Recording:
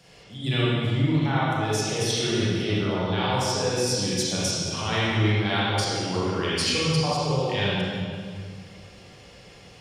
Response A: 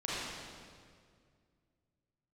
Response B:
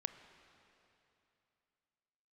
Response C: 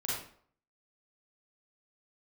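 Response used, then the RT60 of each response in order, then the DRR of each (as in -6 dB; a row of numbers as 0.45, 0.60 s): A; 2.1, 2.9, 0.55 s; -8.5, 9.5, -7.0 dB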